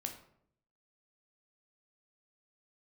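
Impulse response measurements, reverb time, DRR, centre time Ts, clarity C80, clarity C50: 0.65 s, 3.5 dB, 16 ms, 12.5 dB, 9.0 dB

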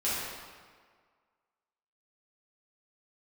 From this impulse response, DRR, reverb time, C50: -11.0 dB, 1.7 s, -2.5 dB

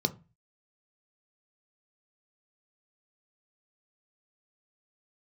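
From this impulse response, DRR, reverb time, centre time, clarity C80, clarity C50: 7.5 dB, 0.30 s, 6 ms, 25.5 dB, 19.5 dB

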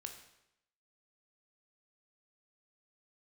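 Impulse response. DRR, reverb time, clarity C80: 4.5 dB, 0.80 s, 10.5 dB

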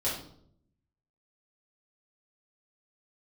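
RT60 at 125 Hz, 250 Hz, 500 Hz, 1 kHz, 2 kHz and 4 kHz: 1.1 s, 0.95 s, 0.75 s, 0.55 s, 0.45 s, 0.50 s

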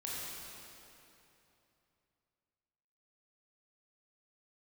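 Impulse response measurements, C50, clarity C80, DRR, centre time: -4.0 dB, -2.0 dB, -6.5 dB, 186 ms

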